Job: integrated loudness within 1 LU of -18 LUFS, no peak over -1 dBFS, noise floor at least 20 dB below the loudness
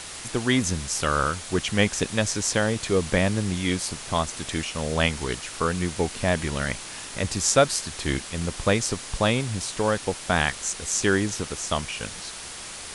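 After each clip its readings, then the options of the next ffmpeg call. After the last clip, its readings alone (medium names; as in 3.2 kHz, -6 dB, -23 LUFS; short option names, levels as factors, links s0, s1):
noise floor -38 dBFS; noise floor target -45 dBFS; loudness -25.0 LUFS; peak level -4.5 dBFS; loudness target -18.0 LUFS
-> -af "afftdn=nr=7:nf=-38"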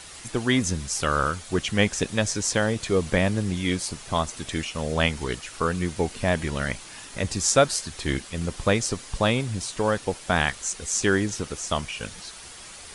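noise floor -43 dBFS; noise floor target -46 dBFS
-> -af "afftdn=nr=6:nf=-43"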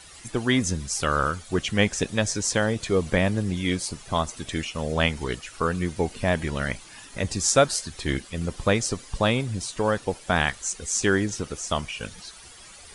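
noise floor -47 dBFS; loudness -25.5 LUFS; peak level -5.0 dBFS; loudness target -18.0 LUFS
-> -af "volume=2.37,alimiter=limit=0.891:level=0:latency=1"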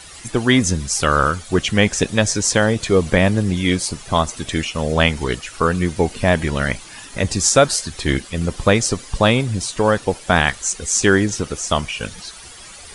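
loudness -18.5 LUFS; peak level -1.0 dBFS; noise floor -39 dBFS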